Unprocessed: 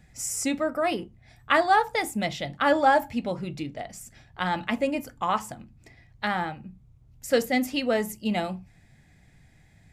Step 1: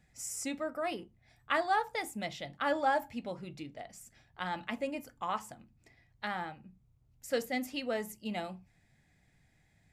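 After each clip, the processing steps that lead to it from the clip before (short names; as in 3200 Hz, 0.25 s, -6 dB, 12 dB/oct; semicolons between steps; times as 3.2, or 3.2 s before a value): low shelf 230 Hz -4.5 dB; gain -9 dB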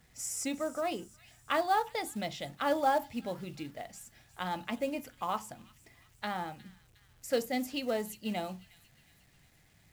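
thin delay 0.359 s, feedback 50%, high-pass 2800 Hz, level -17 dB; dynamic EQ 1800 Hz, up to -6 dB, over -47 dBFS, Q 1.4; companded quantiser 6-bit; gain +2.5 dB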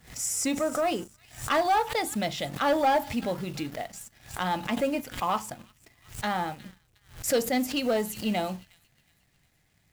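sample leveller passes 2; backwards sustainer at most 140 dB/s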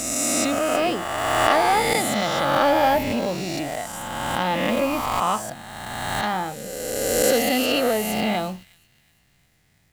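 spectral swells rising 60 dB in 2.19 s; gain +1.5 dB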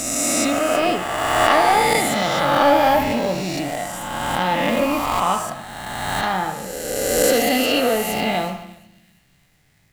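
band-limited delay 72 ms, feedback 52%, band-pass 1500 Hz, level -7.5 dB; shoebox room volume 300 m³, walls mixed, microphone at 0.31 m; gain +2 dB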